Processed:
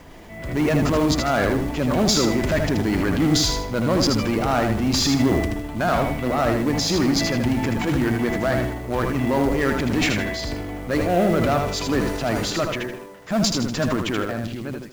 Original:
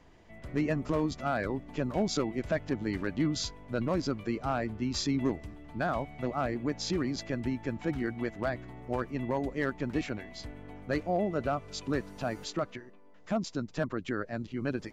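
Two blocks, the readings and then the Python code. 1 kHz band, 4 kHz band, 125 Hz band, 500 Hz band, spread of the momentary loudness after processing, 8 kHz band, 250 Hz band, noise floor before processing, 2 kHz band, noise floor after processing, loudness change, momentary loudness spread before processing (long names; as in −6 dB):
+11.0 dB, +15.5 dB, +12.0 dB, +10.5 dB, 8 LU, can't be measured, +11.5 dB, −53 dBFS, +12.0 dB, −36 dBFS, +11.5 dB, 7 LU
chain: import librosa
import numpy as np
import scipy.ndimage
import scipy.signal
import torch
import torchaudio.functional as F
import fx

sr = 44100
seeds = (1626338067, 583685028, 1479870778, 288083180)

p1 = fx.fade_out_tail(x, sr, length_s=1.1)
p2 = 10.0 ** (-34.5 / 20.0) * np.tanh(p1 / 10.0 ** (-34.5 / 20.0))
p3 = p1 + (p2 * 10.0 ** (-4.5 / 20.0))
p4 = fx.cheby_harmonics(p3, sr, harmonics=(5, 6), levels_db=(-22, -32), full_scale_db=-19.5)
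p5 = fx.quant_companded(p4, sr, bits=6)
p6 = fx.transient(p5, sr, attack_db=-4, sustain_db=8)
p7 = p6 + fx.echo_feedback(p6, sr, ms=79, feedback_pct=30, wet_db=-5.0, dry=0)
y = p7 * 10.0 ** (7.5 / 20.0)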